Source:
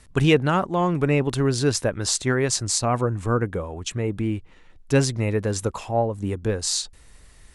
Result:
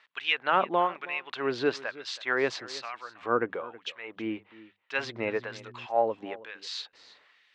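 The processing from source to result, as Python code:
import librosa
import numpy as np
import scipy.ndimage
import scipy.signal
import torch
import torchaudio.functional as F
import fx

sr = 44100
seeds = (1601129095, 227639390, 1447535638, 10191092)

y = scipy.signal.sosfilt(scipy.signal.butter(4, 3500.0, 'lowpass', fs=sr, output='sos'), x)
y = fx.low_shelf(y, sr, hz=410.0, db=-3.5)
y = fx.hum_notches(y, sr, base_hz=50, count=4)
y = fx.filter_lfo_highpass(y, sr, shape='sine', hz=1.1, low_hz=320.0, high_hz=2400.0, q=0.76)
y = y + 10.0 ** (-18.5 / 20.0) * np.pad(y, (int(322 * sr / 1000.0), 0))[:len(y)]
y = fx.dmg_buzz(y, sr, base_hz=120.0, harmonics=3, level_db=-51.0, tilt_db=-4, odd_only=False, at=(4.97, 5.85), fade=0.02)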